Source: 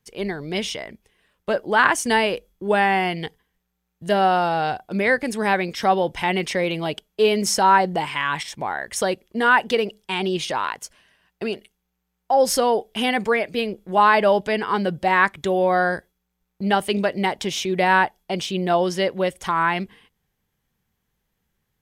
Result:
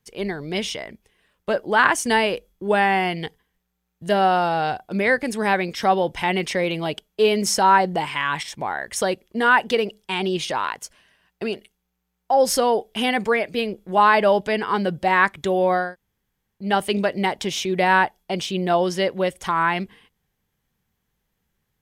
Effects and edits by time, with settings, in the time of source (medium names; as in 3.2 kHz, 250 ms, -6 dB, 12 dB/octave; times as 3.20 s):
15.84–16.64 s: room tone, crossfade 0.24 s